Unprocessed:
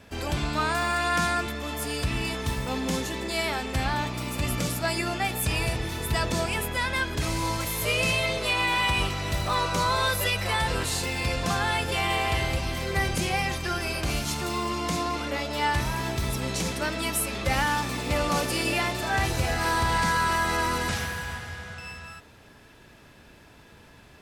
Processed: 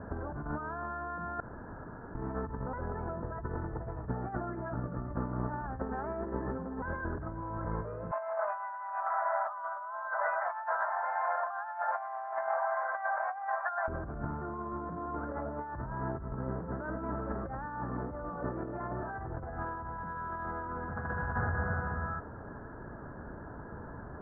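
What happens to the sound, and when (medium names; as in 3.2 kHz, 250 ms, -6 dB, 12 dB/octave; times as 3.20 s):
1.40–2.15 s: room tone
2.73–6.82 s: reverse
8.11–13.88 s: rippled Chebyshev high-pass 610 Hz, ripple 3 dB
whole clip: steep low-pass 1.6 kHz 72 dB/octave; peak limiter -26 dBFS; compressor with a negative ratio -38 dBFS, ratio -0.5; trim +3.5 dB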